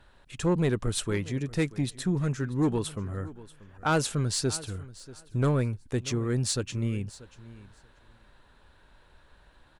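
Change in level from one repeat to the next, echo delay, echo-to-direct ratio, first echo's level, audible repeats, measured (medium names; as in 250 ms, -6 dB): -16.5 dB, 636 ms, -18.5 dB, -18.5 dB, 2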